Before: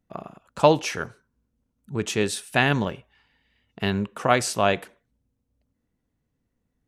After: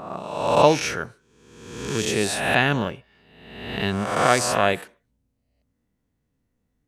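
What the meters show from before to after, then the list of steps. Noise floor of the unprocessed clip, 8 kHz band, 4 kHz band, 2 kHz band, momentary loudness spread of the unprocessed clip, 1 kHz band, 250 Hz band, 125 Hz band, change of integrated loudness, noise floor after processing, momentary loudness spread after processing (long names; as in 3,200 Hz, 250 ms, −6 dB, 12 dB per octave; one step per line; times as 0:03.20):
−77 dBFS, +4.0 dB, +3.0 dB, +3.0 dB, 15 LU, +3.0 dB, +0.5 dB, +0.5 dB, +2.0 dB, −74 dBFS, 15 LU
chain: peak hold with a rise ahead of every peak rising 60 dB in 1.07 s
level −1 dB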